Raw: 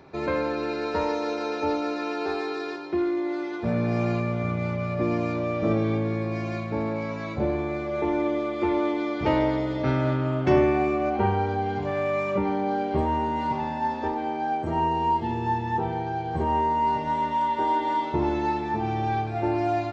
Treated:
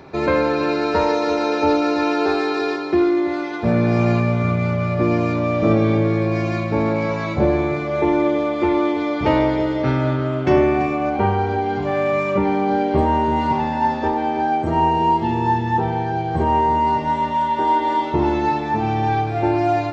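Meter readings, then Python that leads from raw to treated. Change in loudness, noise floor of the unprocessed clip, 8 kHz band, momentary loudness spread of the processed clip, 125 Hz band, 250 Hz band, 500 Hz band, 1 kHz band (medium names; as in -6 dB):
+7.0 dB, -32 dBFS, no reading, 4 LU, +7.0 dB, +7.0 dB, +7.0 dB, +6.5 dB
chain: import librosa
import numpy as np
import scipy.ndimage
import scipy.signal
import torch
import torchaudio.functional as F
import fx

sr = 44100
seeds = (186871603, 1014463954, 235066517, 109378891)

p1 = fx.rider(x, sr, range_db=10, speed_s=2.0)
p2 = p1 + fx.echo_single(p1, sr, ms=333, db=-12.0, dry=0)
y = p2 * librosa.db_to_amplitude(6.5)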